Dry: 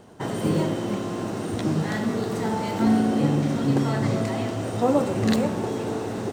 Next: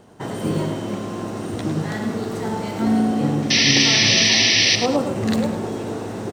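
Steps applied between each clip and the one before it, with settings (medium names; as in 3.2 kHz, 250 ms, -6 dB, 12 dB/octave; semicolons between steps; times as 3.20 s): painted sound noise, 3.50–4.76 s, 1.7–6.1 kHz -17 dBFS; on a send: feedback delay 104 ms, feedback 29%, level -8.5 dB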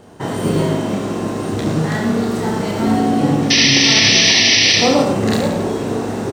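reverse bouncing-ball echo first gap 30 ms, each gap 1.3×, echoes 5; loudness maximiser +5.5 dB; trim -1 dB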